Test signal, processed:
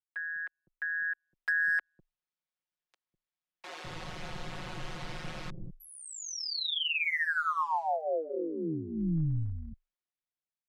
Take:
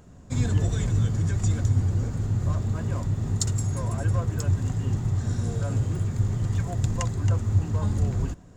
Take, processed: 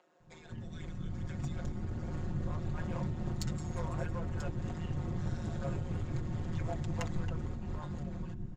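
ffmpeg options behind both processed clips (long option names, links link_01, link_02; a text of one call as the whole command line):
ffmpeg -i in.wav -filter_complex "[0:a]tremolo=f=160:d=0.75,acompressor=threshold=-32dB:ratio=5,lowpass=3900,acrossover=split=380[link_01][link_02];[link_01]adelay=200[link_03];[link_03][link_02]amix=inputs=2:normalize=0,dynaudnorm=framelen=360:gausssize=7:maxgain=10.5dB,volume=20dB,asoftclip=hard,volume=-20dB,aecho=1:1:5.4:0.79,afreqshift=-22,volume=-7dB" out.wav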